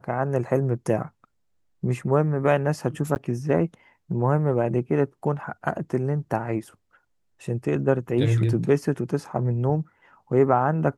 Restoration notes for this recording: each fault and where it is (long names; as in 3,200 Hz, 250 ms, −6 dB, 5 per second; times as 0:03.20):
0:03.15–0:03.16: drop-out 9.9 ms